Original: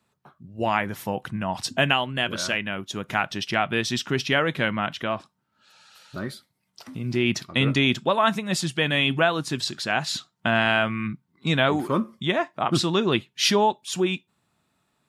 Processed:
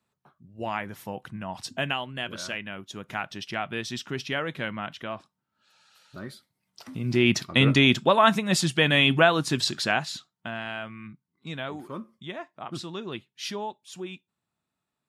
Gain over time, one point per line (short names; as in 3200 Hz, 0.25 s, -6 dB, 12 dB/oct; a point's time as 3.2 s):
6.19 s -7.5 dB
7.23 s +2 dB
9.88 s +2 dB
10.11 s -7 dB
10.57 s -13.5 dB